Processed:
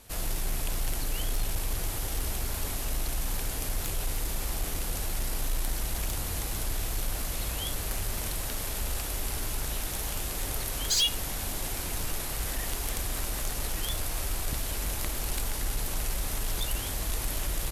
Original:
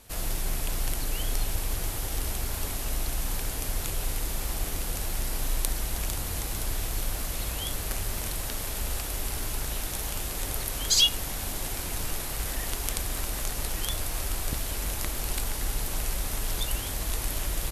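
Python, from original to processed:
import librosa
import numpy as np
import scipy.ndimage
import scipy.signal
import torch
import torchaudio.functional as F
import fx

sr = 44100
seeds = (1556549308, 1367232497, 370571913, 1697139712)

y = 10.0 ** (-20.0 / 20.0) * np.tanh(x / 10.0 ** (-20.0 / 20.0))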